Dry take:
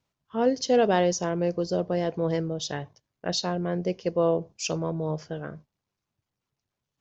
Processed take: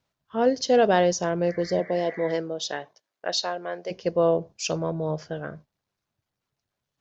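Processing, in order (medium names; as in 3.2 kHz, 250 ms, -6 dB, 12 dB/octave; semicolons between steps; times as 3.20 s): 1.79–3.90 s: high-pass 190 Hz -> 630 Hz 12 dB/octave; 1.49–2.31 s: spectral replace 1.1–2.3 kHz both; fifteen-band graphic EQ 630 Hz +4 dB, 1.6 kHz +4 dB, 4 kHz +3 dB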